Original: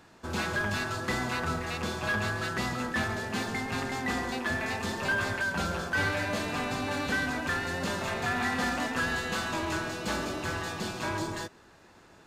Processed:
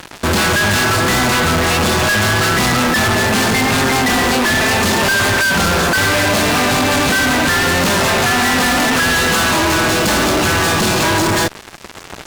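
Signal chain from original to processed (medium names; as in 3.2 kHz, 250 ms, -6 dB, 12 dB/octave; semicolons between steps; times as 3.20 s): fuzz box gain 49 dB, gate -52 dBFS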